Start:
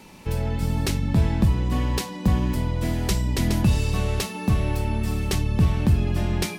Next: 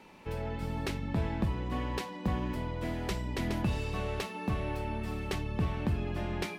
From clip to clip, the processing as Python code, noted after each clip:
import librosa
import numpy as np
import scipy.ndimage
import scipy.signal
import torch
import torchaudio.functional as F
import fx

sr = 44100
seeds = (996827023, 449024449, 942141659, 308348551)

y = fx.bass_treble(x, sr, bass_db=-8, treble_db=-12)
y = F.gain(torch.from_numpy(y), -5.0).numpy()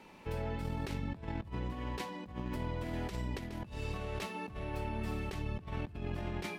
y = fx.over_compress(x, sr, threshold_db=-35.0, ratio=-0.5)
y = F.gain(torch.from_numpy(y), -3.0).numpy()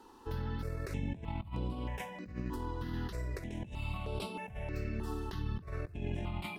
y = fx.phaser_held(x, sr, hz=3.2, low_hz=610.0, high_hz=6400.0)
y = F.gain(torch.from_numpy(y), 2.0).numpy()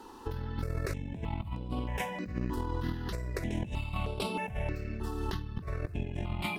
y = fx.over_compress(x, sr, threshold_db=-39.0, ratio=-0.5)
y = F.gain(torch.from_numpy(y), 5.5).numpy()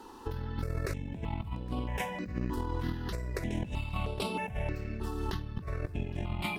y = x + 10.0 ** (-23.0 / 20.0) * np.pad(x, (int(814 * sr / 1000.0), 0))[:len(x)]